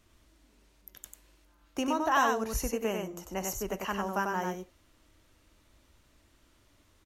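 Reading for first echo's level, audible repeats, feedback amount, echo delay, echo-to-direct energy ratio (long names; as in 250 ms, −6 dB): −4.0 dB, 1, repeats not evenly spaced, 95 ms, −4.0 dB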